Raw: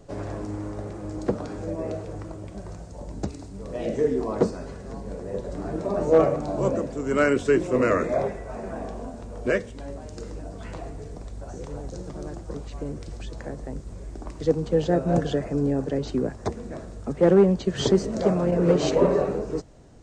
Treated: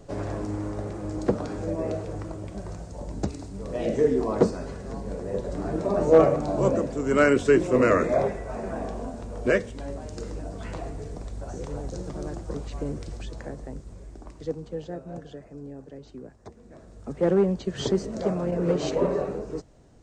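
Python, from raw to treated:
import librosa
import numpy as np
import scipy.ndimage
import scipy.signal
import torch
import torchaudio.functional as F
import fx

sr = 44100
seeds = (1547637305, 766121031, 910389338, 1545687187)

y = fx.gain(x, sr, db=fx.line((12.93, 1.5), (14.3, -7.0), (15.17, -16.5), (16.53, -16.5), (17.14, -4.5)))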